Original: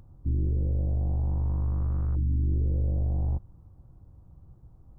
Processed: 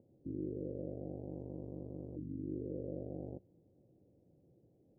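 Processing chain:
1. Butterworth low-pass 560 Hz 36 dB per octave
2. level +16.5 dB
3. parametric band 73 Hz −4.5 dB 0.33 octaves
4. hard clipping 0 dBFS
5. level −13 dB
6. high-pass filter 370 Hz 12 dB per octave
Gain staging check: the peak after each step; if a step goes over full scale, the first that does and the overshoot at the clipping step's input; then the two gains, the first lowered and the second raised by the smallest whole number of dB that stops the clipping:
−19.0, −2.5, −4.0, −4.0, −17.0, −30.0 dBFS
no step passes full scale

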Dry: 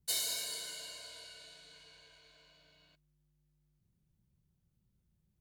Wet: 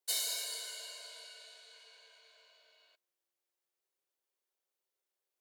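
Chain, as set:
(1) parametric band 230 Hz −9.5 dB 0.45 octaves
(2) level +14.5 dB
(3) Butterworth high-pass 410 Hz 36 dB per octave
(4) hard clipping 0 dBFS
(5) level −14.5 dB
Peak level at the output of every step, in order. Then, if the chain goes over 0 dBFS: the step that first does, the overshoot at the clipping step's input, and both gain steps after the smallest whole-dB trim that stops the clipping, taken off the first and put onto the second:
−20.0, −5.5, −6.0, −6.0, −20.5 dBFS
no step passes full scale

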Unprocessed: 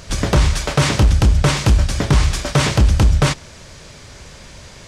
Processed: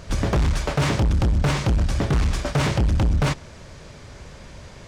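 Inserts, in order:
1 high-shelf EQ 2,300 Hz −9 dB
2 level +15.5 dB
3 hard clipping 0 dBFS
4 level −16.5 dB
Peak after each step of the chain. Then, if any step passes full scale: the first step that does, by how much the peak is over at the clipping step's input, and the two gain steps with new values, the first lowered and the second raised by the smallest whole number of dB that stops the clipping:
−5.5, +10.0, 0.0, −16.5 dBFS
step 2, 10.0 dB
step 2 +5.5 dB, step 4 −6.5 dB

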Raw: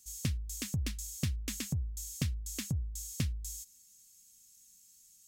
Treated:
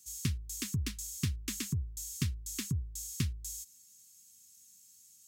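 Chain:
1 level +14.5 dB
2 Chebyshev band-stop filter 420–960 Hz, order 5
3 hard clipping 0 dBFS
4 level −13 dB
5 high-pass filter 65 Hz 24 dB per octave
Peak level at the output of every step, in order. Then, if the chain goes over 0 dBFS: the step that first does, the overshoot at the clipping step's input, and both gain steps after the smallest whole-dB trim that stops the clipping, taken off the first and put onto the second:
−4.0, −6.0, −6.0, −19.0, −18.5 dBFS
no step passes full scale

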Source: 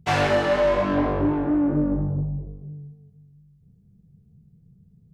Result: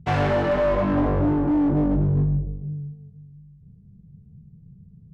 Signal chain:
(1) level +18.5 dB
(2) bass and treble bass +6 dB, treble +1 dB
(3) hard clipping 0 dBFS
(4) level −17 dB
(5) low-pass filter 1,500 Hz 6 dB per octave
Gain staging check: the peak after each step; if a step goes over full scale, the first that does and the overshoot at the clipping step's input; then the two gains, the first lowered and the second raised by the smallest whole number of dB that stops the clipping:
+6.0, +10.0, 0.0, −17.0, −17.0 dBFS
step 1, 10.0 dB
step 1 +8.5 dB, step 4 −7 dB

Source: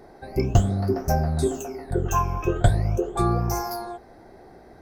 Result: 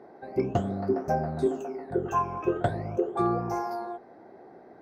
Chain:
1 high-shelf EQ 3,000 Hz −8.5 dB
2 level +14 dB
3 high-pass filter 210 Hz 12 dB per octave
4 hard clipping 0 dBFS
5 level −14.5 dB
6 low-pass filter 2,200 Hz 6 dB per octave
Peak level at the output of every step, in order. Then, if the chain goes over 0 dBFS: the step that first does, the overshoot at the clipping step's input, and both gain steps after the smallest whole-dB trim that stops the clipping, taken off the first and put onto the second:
−7.0, +7.0, +4.5, 0.0, −14.5, −14.5 dBFS
step 2, 4.5 dB
step 2 +9 dB, step 5 −9.5 dB

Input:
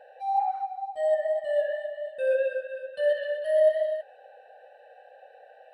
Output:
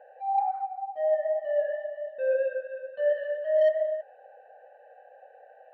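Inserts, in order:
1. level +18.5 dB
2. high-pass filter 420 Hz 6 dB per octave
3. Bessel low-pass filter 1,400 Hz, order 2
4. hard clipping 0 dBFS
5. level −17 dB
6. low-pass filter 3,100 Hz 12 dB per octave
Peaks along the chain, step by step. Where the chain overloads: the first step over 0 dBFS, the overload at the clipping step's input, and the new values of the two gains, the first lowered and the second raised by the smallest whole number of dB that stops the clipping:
+6.0, +4.0, +3.5, 0.0, −17.0, −17.0 dBFS
step 1, 3.5 dB
step 1 +14.5 dB, step 5 −13 dB

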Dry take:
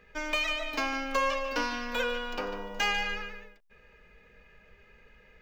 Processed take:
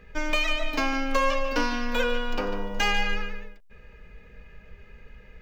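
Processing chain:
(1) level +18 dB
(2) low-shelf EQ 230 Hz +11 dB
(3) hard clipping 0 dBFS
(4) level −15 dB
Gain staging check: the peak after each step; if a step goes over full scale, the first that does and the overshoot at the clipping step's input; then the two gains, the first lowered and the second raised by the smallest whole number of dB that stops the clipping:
+2.0, +4.5, 0.0, −15.0 dBFS
step 1, 4.5 dB
step 1 +13 dB, step 4 −10 dB

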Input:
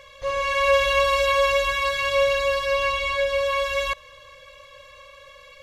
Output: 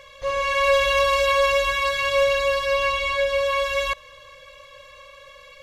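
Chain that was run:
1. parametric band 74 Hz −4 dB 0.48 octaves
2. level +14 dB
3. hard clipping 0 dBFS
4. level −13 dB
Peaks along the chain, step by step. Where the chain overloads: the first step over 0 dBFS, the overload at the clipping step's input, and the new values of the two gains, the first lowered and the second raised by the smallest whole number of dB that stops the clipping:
−8.5, +5.5, 0.0, −13.0 dBFS
step 2, 5.5 dB
step 2 +8 dB, step 4 −7 dB

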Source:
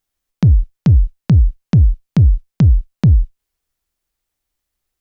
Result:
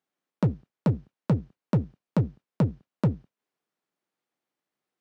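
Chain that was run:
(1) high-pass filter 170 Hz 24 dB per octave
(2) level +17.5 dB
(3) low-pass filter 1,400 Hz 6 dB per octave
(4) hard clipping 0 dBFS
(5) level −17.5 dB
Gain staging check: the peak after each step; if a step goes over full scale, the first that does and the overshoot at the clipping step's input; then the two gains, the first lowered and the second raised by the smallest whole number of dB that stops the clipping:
−7.5, +10.0, +10.0, 0.0, −17.5 dBFS
step 2, 10.0 dB
step 2 +7.5 dB, step 5 −7.5 dB

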